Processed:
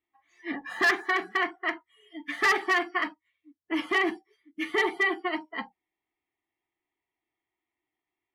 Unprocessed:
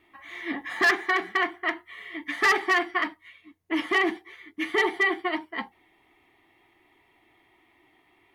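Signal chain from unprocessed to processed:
noise reduction from a noise print of the clip's start 24 dB
level −2 dB

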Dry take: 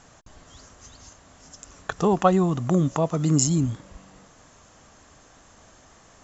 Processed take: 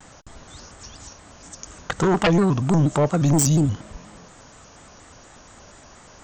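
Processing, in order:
sine wavefolder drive 10 dB, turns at −5 dBFS
pitch modulation by a square or saw wave square 4.2 Hz, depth 160 cents
level −8 dB

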